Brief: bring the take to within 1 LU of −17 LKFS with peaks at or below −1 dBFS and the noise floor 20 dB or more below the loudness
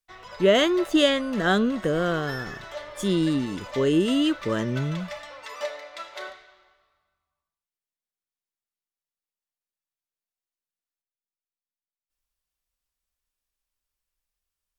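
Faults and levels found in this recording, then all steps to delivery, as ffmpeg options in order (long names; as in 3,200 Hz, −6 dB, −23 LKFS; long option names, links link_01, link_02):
integrated loudness −24.0 LKFS; sample peak −7.0 dBFS; target loudness −17.0 LKFS
→ -af "volume=7dB,alimiter=limit=-1dB:level=0:latency=1"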